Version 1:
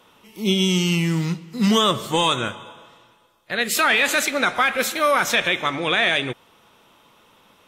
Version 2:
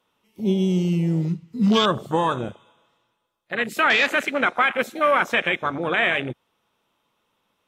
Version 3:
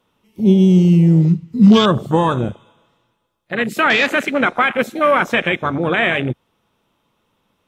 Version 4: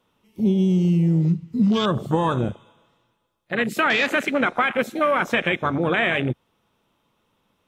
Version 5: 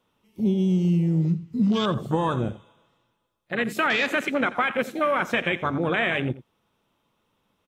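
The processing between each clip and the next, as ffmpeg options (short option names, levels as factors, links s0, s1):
-af "afwtdn=0.0794"
-af "lowshelf=f=320:g=10,volume=1.41"
-af "acompressor=threshold=0.224:ratio=10,volume=0.75"
-af "aecho=1:1:86:0.141,volume=0.708"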